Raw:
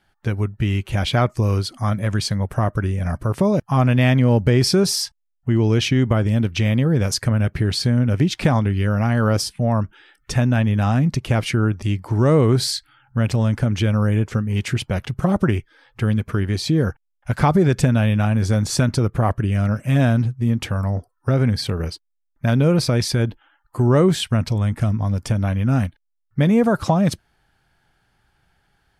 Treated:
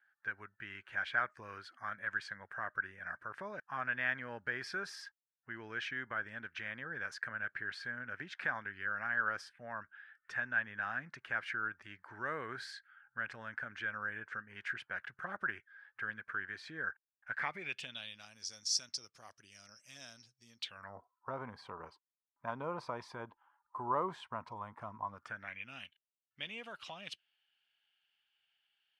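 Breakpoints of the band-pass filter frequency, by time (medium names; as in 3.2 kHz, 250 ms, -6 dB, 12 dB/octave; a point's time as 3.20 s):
band-pass filter, Q 7.3
17.31 s 1.6 kHz
18.32 s 5.4 kHz
20.56 s 5.4 kHz
20.97 s 1 kHz
25.08 s 1 kHz
25.72 s 2.9 kHz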